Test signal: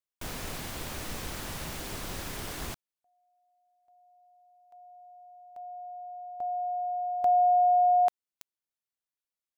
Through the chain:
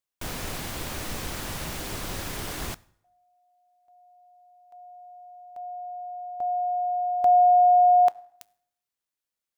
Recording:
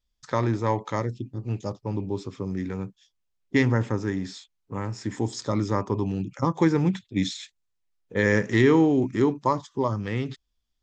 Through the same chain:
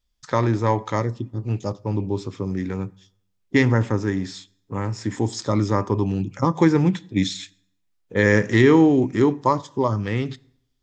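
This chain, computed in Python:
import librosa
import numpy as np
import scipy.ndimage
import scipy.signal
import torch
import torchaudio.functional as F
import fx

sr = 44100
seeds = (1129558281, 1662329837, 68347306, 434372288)

y = fx.rev_fdn(x, sr, rt60_s=0.72, lf_ratio=1.0, hf_ratio=0.8, size_ms=57.0, drr_db=19.0)
y = y * librosa.db_to_amplitude(4.0)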